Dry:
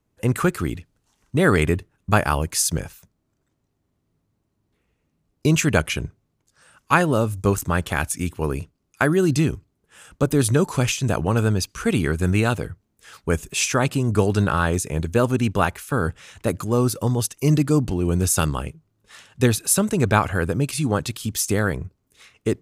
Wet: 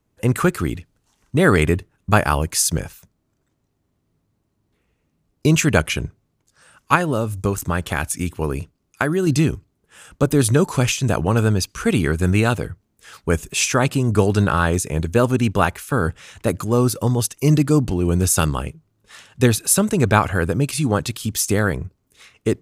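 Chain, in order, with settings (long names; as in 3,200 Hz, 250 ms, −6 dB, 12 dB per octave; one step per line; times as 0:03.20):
0:06.95–0:09.27: downward compressor 2.5 to 1, threshold −20 dBFS, peak gain reduction 5.5 dB
level +2.5 dB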